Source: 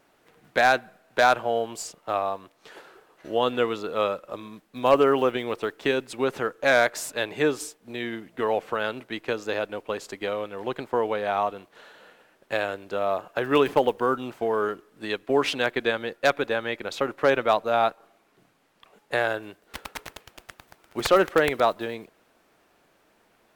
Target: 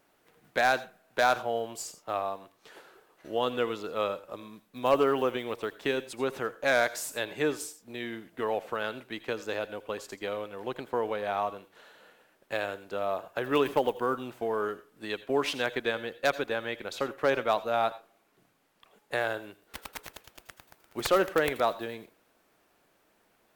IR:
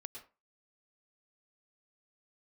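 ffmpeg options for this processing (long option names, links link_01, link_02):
-filter_complex "[0:a]aeval=exprs='0.355*(cos(1*acos(clip(val(0)/0.355,-1,1)))-cos(1*PI/2))+0.00398*(cos(6*acos(clip(val(0)/0.355,-1,1)))-cos(6*PI/2))+0.00398*(cos(8*acos(clip(val(0)/0.355,-1,1)))-cos(8*PI/2))':channel_layout=same,asplit=2[link_01][link_02];[link_02]aemphasis=mode=production:type=75kf[link_03];[1:a]atrim=start_sample=2205,asetrate=57330,aresample=44100[link_04];[link_03][link_04]afir=irnorm=-1:irlink=0,volume=-5.5dB[link_05];[link_01][link_05]amix=inputs=2:normalize=0,volume=-7dB"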